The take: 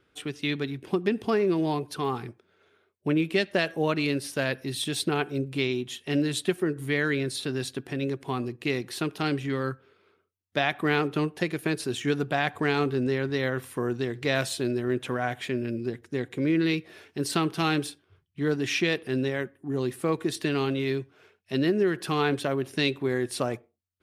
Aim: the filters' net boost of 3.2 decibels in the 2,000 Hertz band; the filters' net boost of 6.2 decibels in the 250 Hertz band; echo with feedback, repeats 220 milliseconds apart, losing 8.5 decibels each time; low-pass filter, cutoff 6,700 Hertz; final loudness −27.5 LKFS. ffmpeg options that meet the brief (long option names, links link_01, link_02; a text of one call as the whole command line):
ffmpeg -i in.wav -af "lowpass=6700,equalizer=frequency=250:width_type=o:gain=8,equalizer=frequency=2000:width_type=o:gain=4,aecho=1:1:220|440|660|880:0.376|0.143|0.0543|0.0206,volume=-4dB" out.wav